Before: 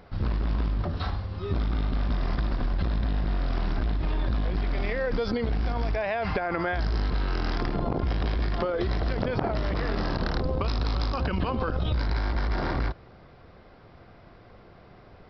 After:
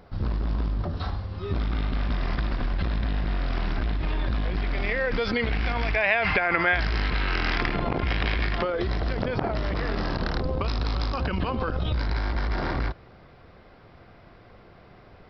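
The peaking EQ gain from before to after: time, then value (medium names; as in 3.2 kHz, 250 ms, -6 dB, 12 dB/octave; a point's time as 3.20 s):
peaking EQ 2.3 kHz 1.4 oct
1.07 s -3 dB
1.80 s +6 dB
4.84 s +6 dB
5.43 s +14.5 dB
8.39 s +14.5 dB
8.84 s +2.5 dB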